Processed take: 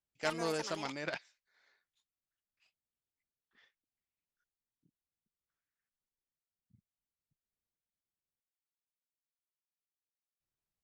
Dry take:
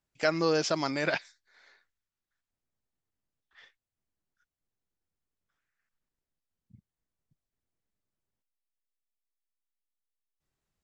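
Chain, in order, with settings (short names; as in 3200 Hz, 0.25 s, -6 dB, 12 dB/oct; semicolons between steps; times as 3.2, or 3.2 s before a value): added harmonics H 3 -15 dB, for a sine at -11.5 dBFS; echoes that change speed 90 ms, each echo +6 st, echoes 2, each echo -6 dB; gain -5 dB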